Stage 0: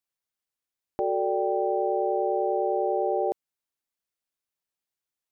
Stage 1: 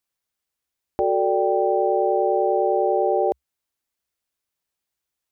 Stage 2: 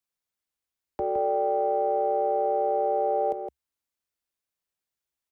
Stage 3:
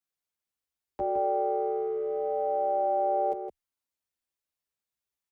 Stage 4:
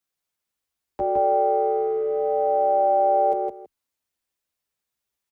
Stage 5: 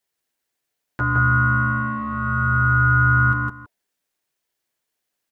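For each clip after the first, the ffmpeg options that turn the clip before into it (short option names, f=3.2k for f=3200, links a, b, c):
-af "equalizer=f=66:w=2.9:g=9.5,volume=5.5dB"
-filter_complex "[0:a]acrossover=split=130|280|390[a][b][c][d];[c]asoftclip=type=tanh:threshold=-33.5dB[e];[a][b][e][d]amix=inputs=4:normalize=0,asplit=2[f][g];[g]adelay=163.3,volume=-7dB,highshelf=f=4k:g=-3.67[h];[f][h]amix=inputs=2:normalize=0,volume=-6dB"
-filter_complex "[0:a]asplit=2[a][b];[b]adelay=9.1,afreqshift=-0.5[c];[a][c]amix=inputs=2:normalize=1"
-filter_complex "[0:a]asplit=2[a][b];[b]adelay=163.3,volume=-10dB,highshelf=f=4k:g=-3.67[c];[a][c]amix=inputs=2:normalize=0,volume=5.5dB"
-af "equalizer=f=125:t=o:w=1:g=-4,equalizer=f=250:t=o:w=1:g=3,equalizer=f=500:t=o:w=1:g=-10,equalizer=f=1k:t=o:w=1:g=7,aeval=exprs='val(0)*sin(2*PI*660*n/s)':c=same,volume=7dB"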